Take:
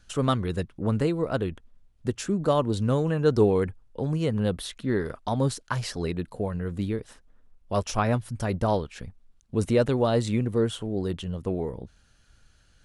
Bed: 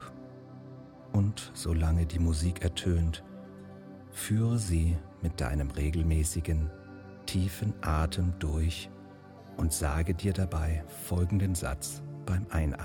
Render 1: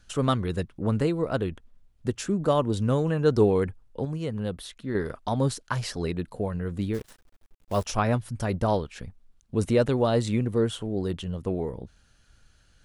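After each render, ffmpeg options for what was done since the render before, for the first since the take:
ffmpeg -i in.wav -filter_complex "[0:a]asettb=1/sr,asplit=3[link_01][link_02][link_03];[link_01]atrim=end=2.324[link_04];[link_02]atrim=start=2.32:end=2.99,asetpts=PTS-STARTPTS,afade=type=in:duration=0.004:curve=qsin,afade=type=out:start_time=0.666:duration=0.004:curve=qsin,bandreject=frequency=4200:width=12[link_05];[link_03]atrim=start=2.986[link_06];[link_04][link_05]acrossfade=duration=0.004:curve1=hsin:curve2=qsin[link_07];[link_07][link_06]acrossfade=duration=0.004:curve1=qsin:curve2=hsin,asplit=3[link_08][link_09][link_10];[link_08]afade=type=out:start_time=6.93:duration=0.02[link_11];[link_09]acrusher=bits=8:dc=4:mix=0:aa=0.000001,afade=type=in:start_time=6.93:duration=0.02,afade=type=out:start_time=7.85:duration=0.02[link_12];[link_10]afade=type=in:start_time=7.85:duration=0.02[link_13];[link_11][link_12][link_13]amix=inputs=3:normalize=0,asplit=3[link_14][link_15][link_16];[link_14]atrim=end=4.052[link_17];[link_15]atrim=start=4.048:end=4.952,asetpts=PTS-STARTPTS,volume=-5dB[link_18];[link_16]atrim=start=4.948[link_19];[link_17][link_18]acrossfade=duration=0.004:curve1=hsin:curve2=hsin[link_20];[link_20][link_19]acrossfade=duration=0.004:curve1=hsin:curve2=hsin" out.wav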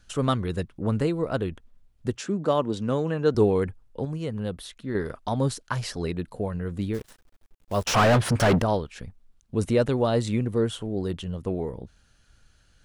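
ffmpeg -i in.wav -filter_complex "[0:a]asettb=1/sr,asplit=3[link_01][link_02][link_03];[link_01]atrim=end=2.174[link_04];[link_02]atrim=start=2.17:end=3.35,asetpts=PTS-STARTPTS,afade=type=in:duration=0.004:curve=qsin,afade=type=out:start_time=1.176:duration=0.004:curve=qsin,highpass=160,lowpass=7200[link_05];[link_03]atrim=start=3.346[link_06];[link_04][link_05]acrossfade=duration=0.004:curve1=hsin:curve2=qsin[link_07];[link_07][link_06]acrossfade=duration=0.004:curve1=qsin:curve2=hsin,asettb=1/sr,asplit=3[link_08][link_09][link_10];[link_08]atrim=end=7.874[link_11];[link_09]atrim=start=7.87:end=8.62,asetpts=PTS-STARTPTS,afade=type=in:duration=0.004:curve=qsin,afade=type=out:start_time=0.746:duration=0.004:curve=qsin,asplit=2[link_12][link_13];[link_13]highpass=frequency=720:poles=1,volume=37dB,asoftclip=type=tanh:threshold=-11.5dB[link_14];[link_12][link_14]amix=inputs=2:normalize=0,lowpass=frequency=2000:poles=1,volume=-6dB[link_15];[link_10]atrim=start=8.616[link_16];[link_11][link_15]acrossfade=duration=0.004:curve1=hsin:curve2=qsin[link_17];[link_17][link_16]acrossfade=duration=0.004:curve1=qsin:curve2=hsin" out.wav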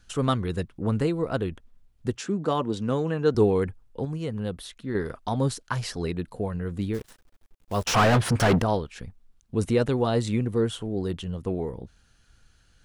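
ffmpeg -i in.wav -af "bandreject=frequency=590:width=12" out.wav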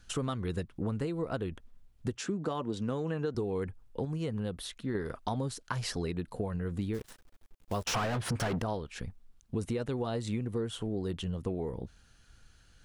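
ffmpeg -i in.wav -af "alimiter=limit=-14.5dB:level=0:latency=1:release=202,acompressor=threshold=-30dB:ratio=6" out.wav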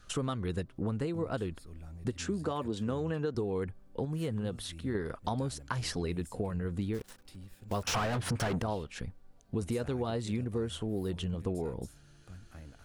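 ffmpeg -i in.wav -i bed.wav -filter_complex "[1:a]volume=-20dB[link_01];[0:a][link_01]amix=inputs=2:normalize=0" out.wav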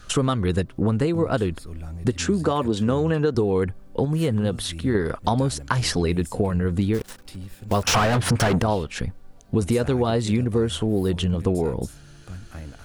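ffmpeg -i in.wav -af "volume=12dB" out.wav

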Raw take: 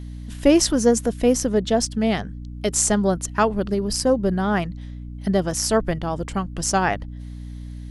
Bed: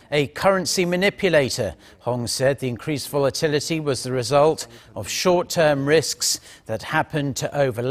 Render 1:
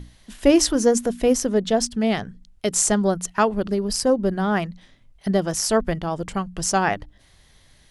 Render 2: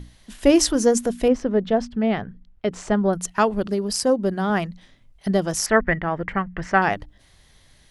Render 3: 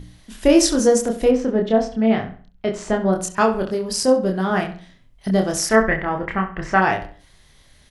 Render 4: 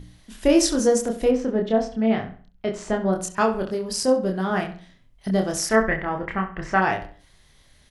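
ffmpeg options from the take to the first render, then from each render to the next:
ffmpeg -i in.wav -af "bandreject=frequency=60:width_type=h:width=6,bandreject=frequency=120:width_type=h:width=6,bandreject=frequency=180:width_type=h:width=6,bandreject=frequency=240:width_type=h:width=6,bandreject=frequency=300:width_type=h:width=6" out.wav
ffmpeg -i in.wav -filter_complex "[0:a]asettb=1/sr,asplit=3[link_01][link_02][link_03];[link_01]atrim=end=1.284[link_04];[link_02]atrim=start=1.28:end=3.13,asetpts=PTS-STARTPTS,afade=type=in:duration=0.004:curve=qsin,afade=type=out:start_time=1.846:duration=0.004:curve=qsin,lowpass=2300[link_05];[link_03]atrim=start=3.126[link_06];[link_04][link_05]acrossfade=duration=0.004:curve1=hsin:curve2=qsin[link_07];[link_07][link_06]acrossfade=duration=0.004:curve1=qsin:curve2=hsin,asettb=1/sr,asplit=3[link_08][link_09][link_10];[link_08]atrim=end=3.654[link_11];[link_09]atrim=start=3.65:end=4.5,asetpts=PTS-STARTPTS,afade=type=in:duration=0.004:curve=qsin,afade=type=out:start_time=0.846:duration=0.004:curve=qsin,highpass=frequency=110:poles=1[link_12];[link_10]atrim=start=4.496[link_13];[link_11][link_12]acrossfade=duration=0.004:curve1=hsin:curve2=qsin[link_14];[link_14][link_13]acrossfade=duration=0.004:curve1=qsin:curve2=hsin,asettb=1/sr,asplit=3[link_15][link_16][link_17];[link_15]atrim=end=5.664[link_18];[link_16]atrim=start=5.66:end=6.82,asetpts=PTS-STARTPTS,afade=type=in:duration=0.004:curve=qsin,afade=type=out:start_time=1.156:duration=0.004:curve=qsin,lowpass=frequency=1900:width_type=q:width=5.2[link_19];[link_17]atrim=start=6.816[link_20];[link_18][link_19]acrossfade=duration=0.004:curve1=hsin:curve2=qsin[link_21];[link_21][link_20]acrossfade=duration=0.004:curve1=qsin:curve2=hsin" out.wav
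ffmpeg -i in.wav -filter_complex "[0:a]asplit=2[link_01][link_02];[link_02]adelay=27,volume=-3dB[link_03];[link_01][link_03]amix=inputs=2:normalize=0,asplit=2[link_04][link_05];[link_05]adelay=67,lowpass=frequency=4000:poles=1,volume=-11dB,asplit=2[link_06][link_07];[link_07]adelay=67,lowpass=frequency=4000:poles=1,volume=0.36,asplit=2[link_08][link_09];[link_09]adelay=67,lowpass=frequency=4000:poles=1,volume=0.36,asplit=2[link_10][link_11];[link_11]adelay=67,lowpass=frequency=4000:poles=1,volume=0.36[link_12];[link_04][link_06][link_08][link_10][link_12]amix=inputs=5:normalize=0" out.wav
ffmpeg -i in.wav -af "volume=-3.5dB" out.wav

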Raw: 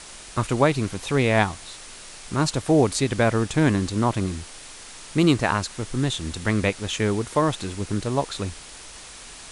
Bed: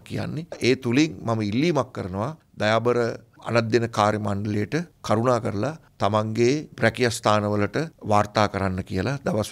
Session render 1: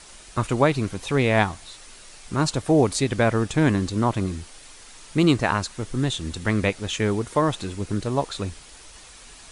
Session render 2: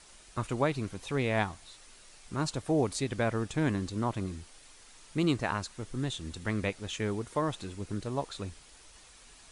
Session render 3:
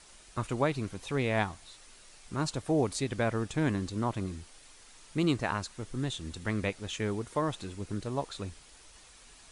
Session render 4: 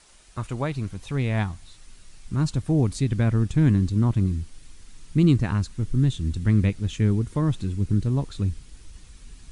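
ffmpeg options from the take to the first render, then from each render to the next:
ffmpeg -i in.wav -af "afftdn=noise_reduction=6:noise_floor=-42" out.wav
ffmpeg -i in.wav -af "volume=-9.5dB" out.wav
ffmpeg -i in.wav -af anull out.wav
ffmpeg -i in.wav -af "asubboost=boost=8.5:cutoff=220" out.wav

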